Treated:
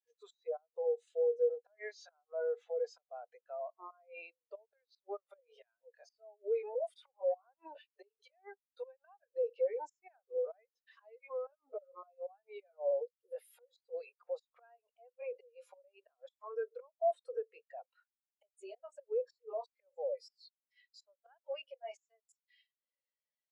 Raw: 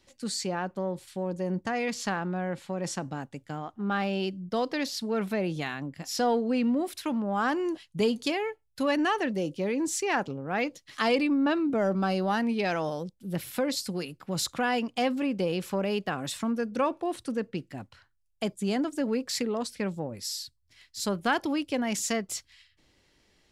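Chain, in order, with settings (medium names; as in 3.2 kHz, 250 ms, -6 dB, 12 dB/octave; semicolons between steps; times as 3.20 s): pitch bend over the whole clip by -2.5 st ending unshifted; steep high-pass 470 Hz 48 dB/octave; in parallel at -1 dB: compression 6:1, threshold -38 dBFS, peak gain reduction 15 dB; on the sum: inverted gate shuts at -22 dBFS, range -27 dB; saturation -28.5 dBFS, distortion -15 dB; peak limiter -39 dBFS, peak gain reduction 10.5 dB; spectral contrast expander 2.5:1; trim +16.5 dB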